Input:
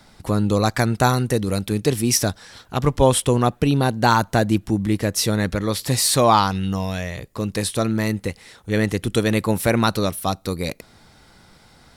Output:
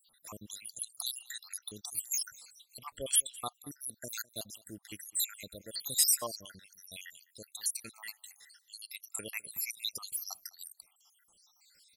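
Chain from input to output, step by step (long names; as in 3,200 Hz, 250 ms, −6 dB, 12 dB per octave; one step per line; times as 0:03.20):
time-frequency cells dropped at random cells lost 79%
first-order pre-emphasis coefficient 0.97
single-tap delay 206 ms −23 dB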